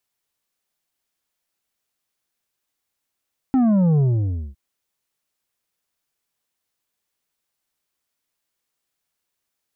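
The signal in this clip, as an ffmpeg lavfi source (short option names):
-f lavfi -i "aevalsrc='0.188*clip((1.01-t)/0.56,0,1)*tanh(2.24*sin(2*PI*270*1.01/log(65/270)*(exp(log(65/270)*t/1.01)-1)))/tanh(2.24)':d=1.01:s=44100"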